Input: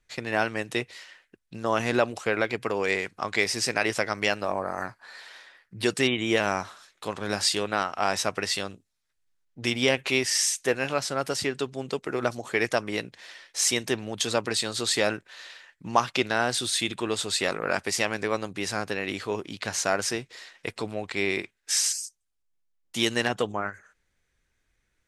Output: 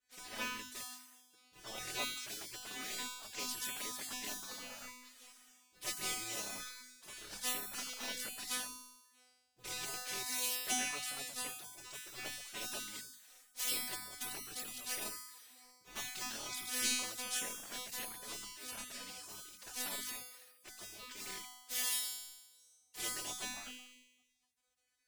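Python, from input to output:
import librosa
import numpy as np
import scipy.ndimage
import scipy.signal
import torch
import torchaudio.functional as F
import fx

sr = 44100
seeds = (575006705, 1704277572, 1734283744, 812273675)

p1 = fx.cycle_switch(x, sr, every=3, mode='muted')
p2 = fx.hum_notches(p1, sr, base_hz=50, count=6)
p3 = fx.env_flanger(p2, sr, rest_ms=10.8, full_db=-22.5)
p4 = fx.high_shelf(p3, sr, hz=3100.0, db=10.0)
p5 = (np.mod(10.0 ** (12.0 / 20.0) * p4 + 1.0, 2.0) - 1.0) / 10.0 ** (12.0 / 20.0)
p6 = p4 + F.gain(torch.from_numpy(p5), -11.0).numpy()
p7 = fx.comb_fb(p6, sr, f0_hz=250.0, decay_s=1.1, harmonics='all', damping=0.0, mix_pct=100)
p8 = fx.spec_gate(p7, sr, threshold_db=-15, keep='weak')
y = F.gain(torch.from_numpy(p8), 14.0).numpy()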